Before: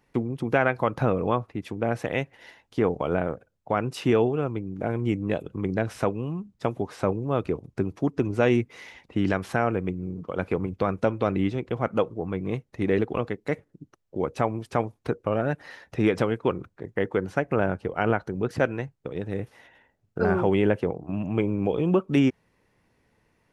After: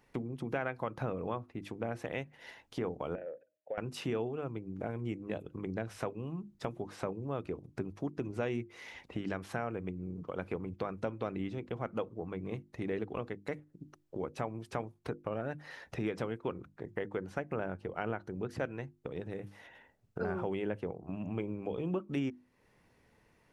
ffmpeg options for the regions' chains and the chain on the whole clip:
-filter_complex "[0:a]asettb=1/sr,asplit=3[a][b][c];[a]atrim=end=3.154[d];[b]atrim=start=3.15:end=3.78,asetpts=PTS-STARTPTS,afade=t=in:d=0.004:c=qsin,afade=t=out:st=0.626:d=0.004:c=qsin,asplit=3[e][f][g];[e]bandpass=f=530:t=q:w=8,volume=0dB[h];[f]bandpass=f=1.84k:t=q:w=8,volume=-6dB[i];[g]bandpass=f=2.48k:t=q:w=8,volume=-9dB[j];[h][i][j]amix=inputs=3:normalize=0,equalizer=f=1.1k:t=o:w=0.68:g=8,bandreject=f=309.9:t=h:w=4,bandreject=f=619.8:t=h:w=4[k];[c]atrim=start=3.776[l];[d][k]acrossfade=d=0.004:c1=hsin:c2=qsin[m];[m][l]acrossfade=d=0.004:c1=qsin:c2=hsin,acompressor=threshold=-42dB:ratio=2,bandreject=f=50:t=h:w=6,bandreject=f=100:t=h:w=6,bandreject=f=150:t=h:w=6,bandreject=f=200:t=h:w=6,bandreject=f=250:t=h:w=6,bandreject=f=300:t=h:w=6,bandreject=f=350:t=h:w=6"

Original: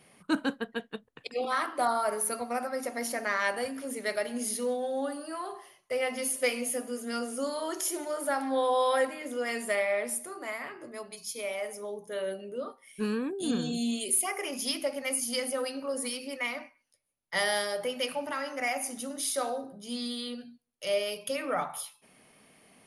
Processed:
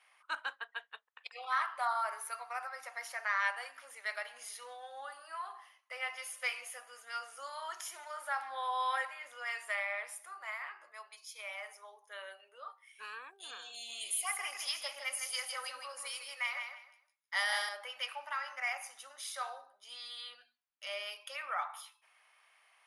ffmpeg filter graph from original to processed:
-filter_complex "[0:a]asettb=1/sr,asplit=3[a][b][c];[a]atrim=end=13.744[d];[b]atrim=start=13.74:end=17.69,asetpts=PTS-STARTPTS,afade=t=in:d=0.004:c=qsin,afade=t=out:st=3.946:d=0.004:c=qsin,bass=f=250:g=6,treble=f=4k:g=5,aecho=1:1:158|316|474:0.501|0.12|0.0289,atrim=end_sample=174195[e];[c]atrim=start=17.686[f];[d][e]acrossfade=d=0.004:c1=hsin:c2=qsin[g];[g][f]acrossfade=d=0.004:c1=qsin:c2=hsin,highpass=f=950:w=0.5412,highpass=f=950:w=1.3066,aemphasis=mode=reproduction:type=75kf,bandreject=f=4.4k:w=23"

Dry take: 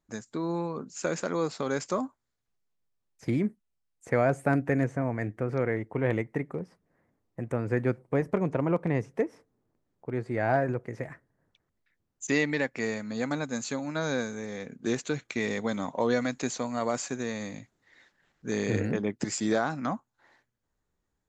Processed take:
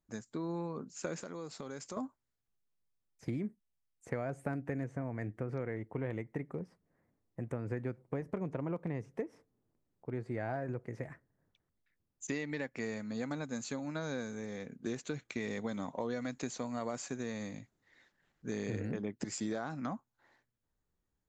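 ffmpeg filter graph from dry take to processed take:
-filter_complex "[0:a]asettb=1/sr,asplit=3[a][b][c];[a]atrim=end=1.204[d];[b]atrim=start=1.2:end=1.97,asetpts=PTS-STARTPTS,afade=t=in:d=0.004:c=qsin,afade=t=out:st=0.766:d=0.004:c=qsin,highshelf=f=7.3k:g=9,acompressor=threshold=-38dB:ratio=2.5:attack=3.2:release=140:knee=1:detection=peak[e];[c]atrim=start=1.966[f];[d][e]acrossfade=d=0.004:c1=hsin:c2=qsin[g];[g][f]acrossfade=d=0.004:c1=qsin:c2=hsin,lowshelf=f=340:g=4,acompressor=threshold=-26dB:ratio=6,volume=-7dB"

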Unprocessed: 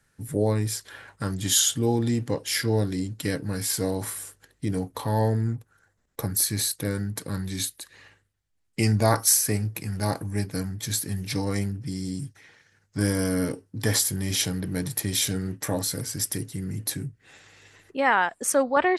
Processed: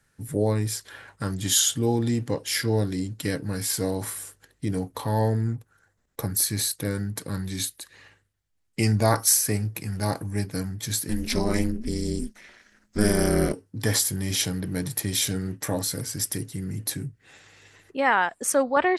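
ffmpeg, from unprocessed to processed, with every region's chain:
-filter_complex "[0:a]asettb=1/sr,asplit=3[a][b][c];[a]atrim=end=11.094[d];[b]atrim=start=11.09:end=13.53,asetpts=PTS-STARTPTS,afade=t=in:d=0.004:c=qsin,afade=t=out:st=2.436:d=0.004:c=qsin,acontrast=68,aeval=exprs='val(0)*sin(2*PI*110*n/s)':c=same[e];[c]atrim=start=13.526[f];[d][e]acrossfade=d=0.004:c1=hsin:c2=qsin[g];[g][f]acrossfade=d=0.004:c1=qsin:c2=hsin"

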